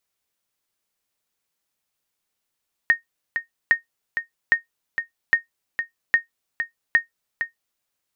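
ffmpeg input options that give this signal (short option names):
-f lavfi -i "aevalsrc='0.447*(sin(2*PI*1850*mod(t,0.81))*exp(-6.91*mod(t,0.81)/0.13)+0.376*sin(2*PI*1850*max(mod(t,0.81)-0.46,0))*exp(-6.91*max(mod(t,0.81)-0.46,0)/0.13))':d=4.86:s=44100"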